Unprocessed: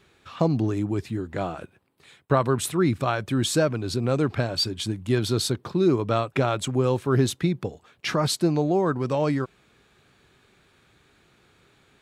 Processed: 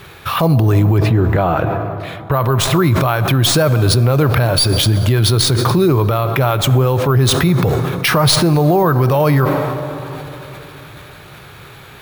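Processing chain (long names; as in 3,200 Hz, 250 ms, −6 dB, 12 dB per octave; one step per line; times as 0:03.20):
stylus tracing distortion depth 0.026 ms
graphic EQ with 10 bands 125 Hz +6 dB, 250 Hz −8 dB, 1,000 Hz +3 dB
bad sample-rate conversion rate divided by 3×, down filtered, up hold
0:00.98–0:02.32: low-pass filter 2,000 Hz 6 dB per octave
dense smooth reverb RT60 3.6 s, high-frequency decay 0.55×, DRR 15.5 dB
downward compressor 4 to 1, threshold −29 dBFS, peak gain reduction 13 dB
boost into a limiter +25.5 dB
level that may fall only so fast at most 26 dB per second
level −4.5 dB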